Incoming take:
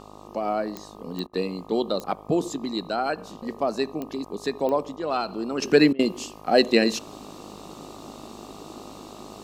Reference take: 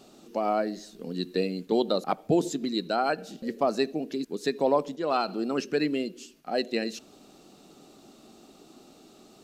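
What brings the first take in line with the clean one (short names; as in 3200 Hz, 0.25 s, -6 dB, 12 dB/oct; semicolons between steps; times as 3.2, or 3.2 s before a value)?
de-click; de-hum 51.6 Hz, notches 24; interpolate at 1.27/5.93, 60 ms; gain 0 dB, from 5.62 s -10 dB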